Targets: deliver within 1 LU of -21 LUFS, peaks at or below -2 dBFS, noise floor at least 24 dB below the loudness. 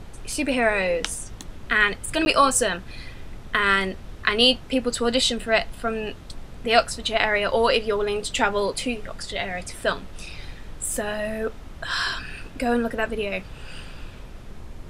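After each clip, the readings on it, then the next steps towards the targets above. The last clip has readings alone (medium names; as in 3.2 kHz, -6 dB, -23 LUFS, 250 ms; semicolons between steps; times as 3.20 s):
dropouts 1; longest dropout 11 ms; noise floor -41 dBFS; noise floor target -48 dBFS; loudness -23.5 LUFS; peak level -2.0 dBFS; loudness target -21.0 LUFS
-> interpolate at 2.25 s, 11 ms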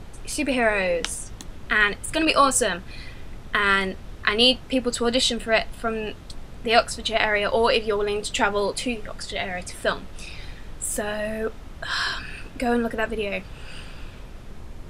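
dropouts 0; noise floor -41 dBFS; noise floor target -48 dBFS
-> noise print and reduce 7 dB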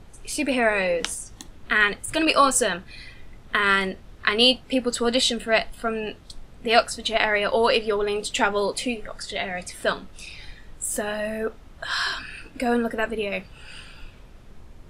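noise floor -47 dBFS; noise floor target -48 dBFS
-> noise print and reduce 6 dB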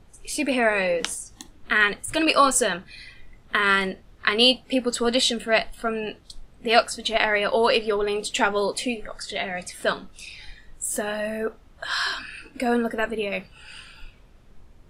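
noise floor -52 dBFS; loudness -23.5 LUFS; peak level -2.5 dBFS; loudness target -21.0 LUFS
-> trim +2.5 dB; peak limiter -2 dBFS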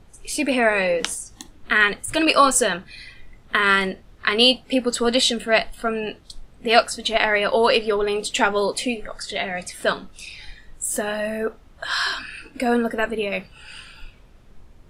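loudness -21.0 LUFS; peak level -2.0 dBFS; noise floor -50 dBFS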